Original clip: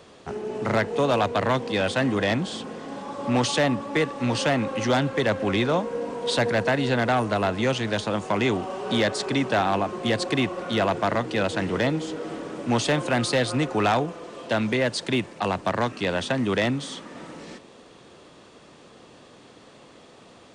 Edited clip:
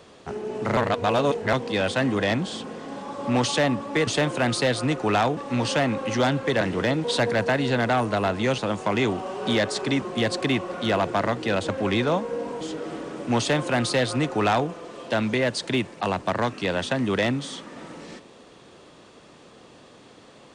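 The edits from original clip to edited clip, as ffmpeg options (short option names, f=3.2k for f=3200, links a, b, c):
-filter_complex "[0:a]asplit=11[a][b][c][d][e][f][g][h][i][j][k];[a]atrim=end=0.772[l];[b]atrim=start=0.768:end=1.532,asetpts=PTS-STARTPTS,areverse[m];[c]atrim=start=1.528:end=4.072[n];[d]atrim=start=12.778:end=14.082[o];[e]atrim=start=4.068:end=5.312[p];[f]atrim=start=11.568:end=12.002[q];[g]atrim=start=6.228:end=7.772[r];[h]atrim=start=8.018:end=9.462[s];[i]atrim=start=9.898:end=11.572[t];[j]atrim=start=5.308:end=6.232[u];[k]atrim=start=11.998[v];[l][m]acrossfade=d=0.004:c1=hsin:c2=hsin[w];[w][n]acrossfade=d=0.004:c1=hsin:c2=hsin[x];[x][o]acrossfade=d=0.004:c1=hsin:c2=hsin[y];[y][p]acrossfade=d=0.004:c1=hsin:c2=hsin[z];[z][q]acrossfade=d=0.004:c1=hsin:c2=hsin[aa];[aa][r]acrossfade=d=0.004:c1=hsin:c2=hsin[ab];[ab][s]acrossfade=d=0.004:c1=hsin:c2=hsin[ac];[ac][t]acrossfade=d=0.004:c1=hsin:c2=hsin[ad];[ad][u]acrossfade=d=0.004:c1=hsin:c2=hsin[ae];[ae][v]acrossfade=d=0.004:c1=hsin:c2=hsin"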